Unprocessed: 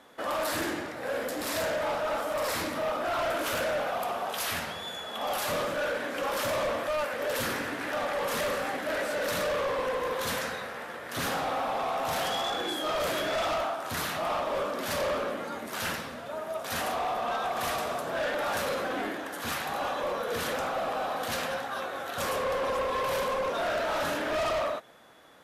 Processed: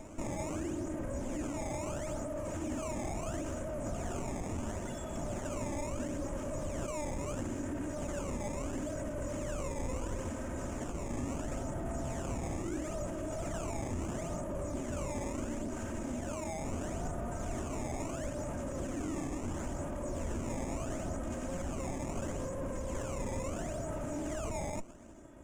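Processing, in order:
lower of the sound and its delayed copy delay 3.2 ms
in parallel at −3 dB: compressor whose output falls as the input rises −38 dBFS
on the sum: tilt shelving filter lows +9.5 dB, about 660 Hz
sample-and-hold swept by an LFO 17×, swing 160% 0.74 Hz
brickwall limiter −27.5 dBFS, peak gain reduction 10 dB
drawn EQ curve 120 Hz 0 dB, 2,900 Hz −10 dB, 4,200 Hz −21 dB, 7,000 Hz +4 dB, 14,000 Hz −21 dB
on a send: backwards echo 419 ms −14 dB

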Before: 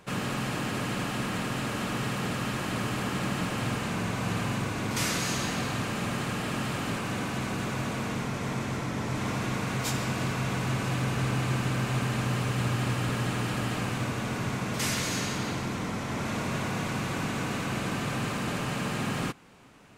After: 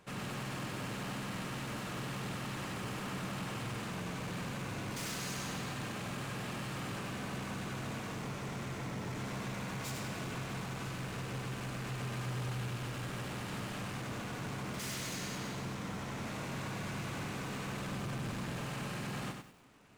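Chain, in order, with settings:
0:17.87–0:18.58: low-shelf EQ 210 Hz +8.5 dB
hard clipping −31 dBFS, distortion −9 dB
feedback echo at a low word length 96 ms, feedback 35%, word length 9 bits, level −5 dB
level −7.5 dB

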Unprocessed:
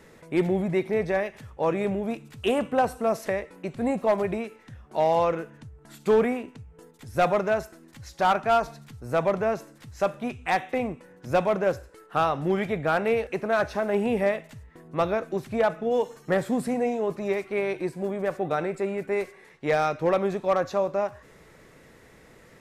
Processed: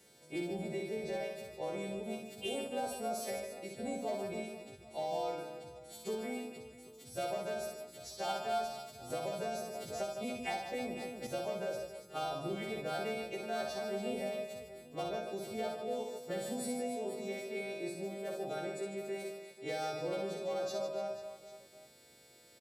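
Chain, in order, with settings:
every partial snapped to a pitch grid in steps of 2 semitones
high-pass filter 170 Hz 6 dB per octave
flat-topped bell 1,400 Hz −8.5 dB
downward compressor, threshold −24 dBFS, peak gain reduction 6.5 dB
tuned comb filter 750 Hz, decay 0.3 s, mix 90%
reverse bouncing-ball delay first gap 60 ms, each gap 1.5×, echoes 5
0:09.10–0:11.27: multiband upward and downward compressor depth 100%
level +8 dB

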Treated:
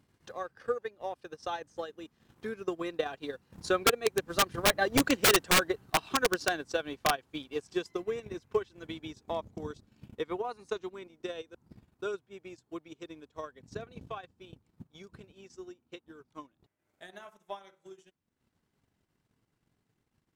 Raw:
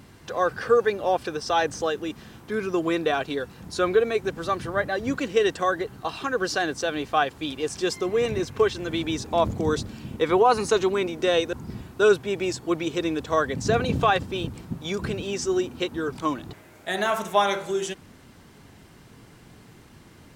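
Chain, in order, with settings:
source passing by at 0:05.29, 8 m/s, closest 5 metres
transient designer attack +9 dB, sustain −11 dB
wrap-around overflow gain 14.5 dB
level −1.5 dB

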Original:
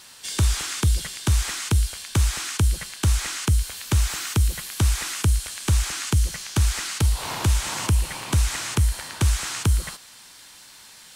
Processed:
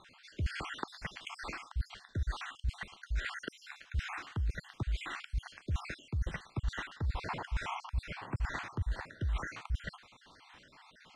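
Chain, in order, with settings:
time-frequency cells dropped at random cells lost 53%
low-pass filter 2,100 Hz 12 dB per octave
reversed playback
downward compressor 8 to 1, threshold −30 dBFS, peak gain reduction 14.5 dB
reversed playback
level −1 dB

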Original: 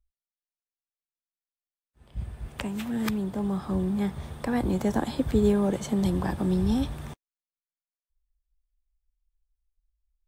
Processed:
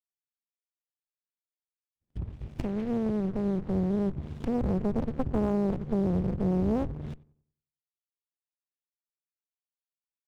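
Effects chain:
treble cut that deepens with the level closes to 320 Hz, closed at −25.5 dBFS
high-pass filter 180 Hz 6 dB per octave
downward expander −48 dBFS
flat-topped bell 900 Hz −15 dB 2.3 octaves
leveller curve on the samples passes 2
feedback echo with a low-pass in the loop 94 ms, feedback 37%, low-pass 940 Hz, level −20.5 dB
windowed peak hold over 65 samples

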